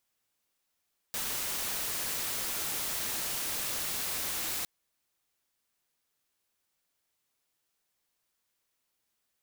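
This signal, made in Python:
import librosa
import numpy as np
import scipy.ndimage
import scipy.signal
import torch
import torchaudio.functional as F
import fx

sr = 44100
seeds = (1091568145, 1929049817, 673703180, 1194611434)

y = fx.noise_colour(sr, seeds[0], length_s=3.51, colour='white', level_db=-34.0)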